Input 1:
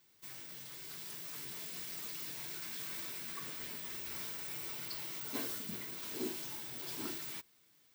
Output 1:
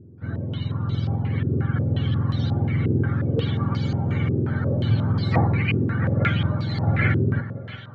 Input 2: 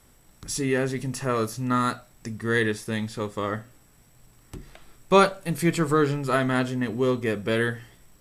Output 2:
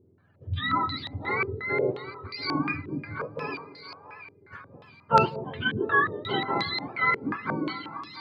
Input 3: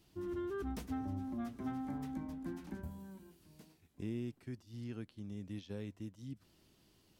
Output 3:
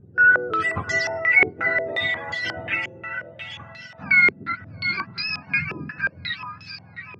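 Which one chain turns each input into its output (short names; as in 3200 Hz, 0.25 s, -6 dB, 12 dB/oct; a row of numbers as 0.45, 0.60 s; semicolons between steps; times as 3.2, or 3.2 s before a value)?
spectrum mirrored in octaves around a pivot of 720 Hz; split-band echo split 580 Hz, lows 0.186 s, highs 0.678 s, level -12 dB; stepped low-pass 5.6 Hz 390–4600 Hz; normalise peaks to -6 dBFS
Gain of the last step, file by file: +19.0, -5.0, +17.5 dB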